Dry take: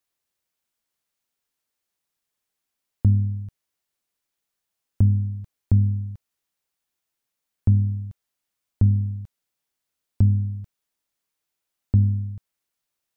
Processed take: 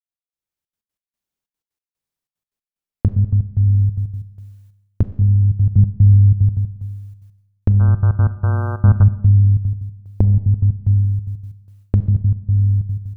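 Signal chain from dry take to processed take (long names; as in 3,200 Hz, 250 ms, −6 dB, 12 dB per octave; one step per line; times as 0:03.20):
low-shelf EQ 350 Hz +10 dB
mains-hum notches 60/120/180/240/300/360/420/480/540 Hz
echo machine with several playback heads 70 ms, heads all three, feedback 50%, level −10 dB
downward compressor 5 to 1, threshold −20 dBFS, peak gain reduction 14 dB
0:07.79–0:09.02: hum with harmonics 120 Hz, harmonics 13, −39 dBFS −2 dB per octave
gate pattern ".x..xxxx.x" 185 BPM −60 dB
automatic gain control gain up to 13 dB
noise gate with hold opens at −44 dBFS
four-comb reverb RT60 0.98 s, combs from 30 ms, DRR 12.5 dB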